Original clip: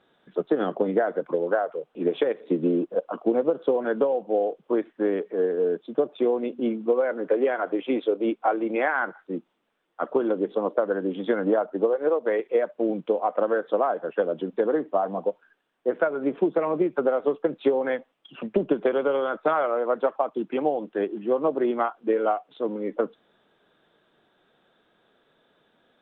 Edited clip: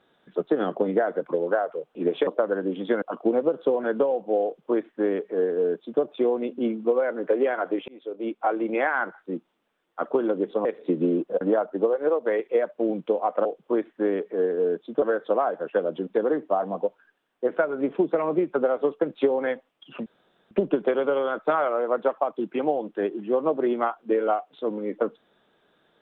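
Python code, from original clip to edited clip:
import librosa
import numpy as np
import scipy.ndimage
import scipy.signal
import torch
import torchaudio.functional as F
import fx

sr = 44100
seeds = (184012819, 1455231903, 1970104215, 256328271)

y = fx.edit(x, sr, fx.swap(start_s=2.27, length_s=0.76, other_s=10.66, other_length_s=0.75),
    fx.duplicate(start_s=4.45, length_s=1.57, to_s=13.45),
    fx.fade_in_span(start_s=7.89, length_s=0.68),
    fx.insert_room_tone(at_s=18.49, length_s=0.45), tone=tone)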